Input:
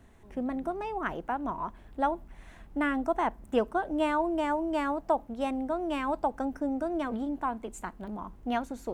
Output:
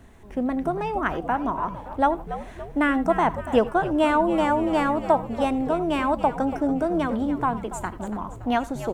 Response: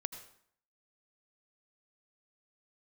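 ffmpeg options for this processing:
-filter_complex "[0:a]asplit=7[a][b][c][d][e][f][g];[b]adelay=284,afreqshift=-99,volume=-12dB[h];[c]adelay=568,afreqshift=-198,volume=-17.5dB[i];[d]adelay=852,afreqshift=-297,volume=-23dB[j];[e]adelay=1136,afreqshift=-396,volume=-28.5dB[k];[f]adelay=1420,afreqshift=-495,volume=-34.1dB[l];[g]adelay=1704,afreqshift=-594,volume=-39.6dB[m];[a][h][i][j][k][l][m]amix=inputs=7:normalize=0,asplit=2[n][o];[1:a]atrim=start_sample=2205,afade=t=out:st=0.14:d=0.01,atrim=end_sample=6615[p];[o][p]afir=irnorm=-1:irlink=0,volume=3.5dB[q];[n][q]amix=inputs=2:normalize=0"

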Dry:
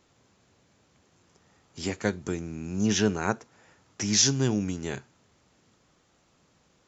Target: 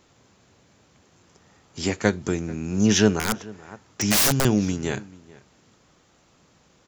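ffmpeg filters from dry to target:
-filter_complex "[0:a]aeval=exprs='0.398*(cos(1*acos(clip(val(0)/0.398,-1,1)))-cos(1*PI/2))+0.0398*(cos(2*acos(clip(val(0)/0.398,-1,1)))-cos(2*PI/2))':c=same,asplit=2[a][b];[b]adelay=437.3,volume=-21dB,highshelf=f=4k:g=-9.84[c];[a][c]amix=inputs=2:normalize=0,asettb=1/sr,asplit=3[d][e][f];[d]atrim=end=3.194[g];[e]atrim=start=3.19:end=4.45,asetpts=PTS-STARTPTS,afade=t=in:d=0.004:c=qsin,afade=t=out:st=1.256:d=0.004:c=qsin,aeval=exprs='(mod(9.44*val(0)+1,2)-1)/9.44':c=same[h];[f]atrim=start=4.446[i];[g][h]acrossfade=d=0.004:c1=hsin:c2=qsin[j];[j][i]acrossfade=d=0.004:c1=qsin:c2=hsin,volume=6dB"

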